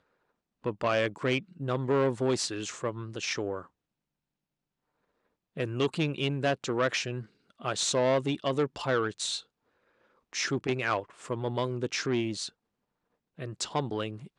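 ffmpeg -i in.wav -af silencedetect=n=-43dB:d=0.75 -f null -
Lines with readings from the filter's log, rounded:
silence_start: 3.65
silence_end: 5.57 | silence_duration: 1.92
silence_start: 9.41
silence_end: 10.33 | silence_duration: 0.92
silence_start: 12.49
silence_end: 13.39 | silence_duration: 0.90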